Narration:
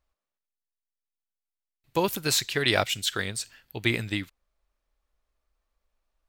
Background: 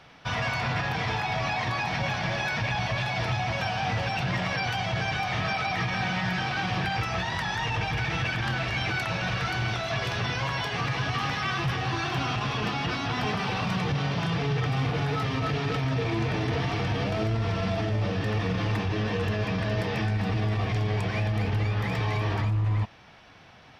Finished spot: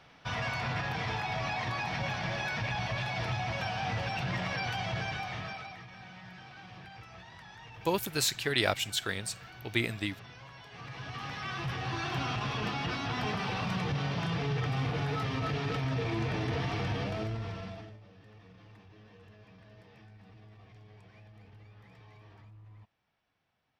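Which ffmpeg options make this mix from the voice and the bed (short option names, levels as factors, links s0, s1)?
-filter_complex "[0:a]adelay=5900,volume=0.596[s0];[1:a]volume=3.35,afade=t=out:st=4.91:d=0.91:silence=0.16788,afade=t=in:st=10.66:d=1.49:silence=0.158489,afade=t=out:st=16.89:d=1.11:silence=0.0707946[s1];[s0][s1]amix=inputs=2:normalize=0"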